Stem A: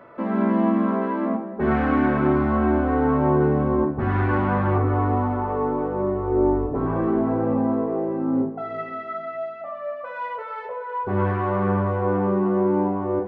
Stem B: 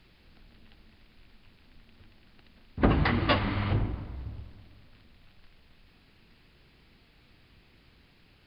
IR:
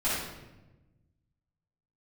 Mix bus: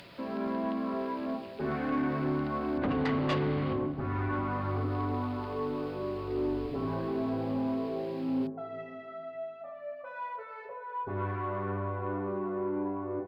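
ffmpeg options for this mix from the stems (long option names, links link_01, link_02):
-filter_complex "[0:a]aecho=1:1:7.3:0.7,volume=-11dB[link_01];[1:a]highpass=130,acompressor=mode=upward:threshold=-33dB:ratio=2.5,volume=-6dB[link_02];[link_01][link_02]amix=inputs=2:normalize=0,asoftclip=type=tanh:threshold=-22.5dB"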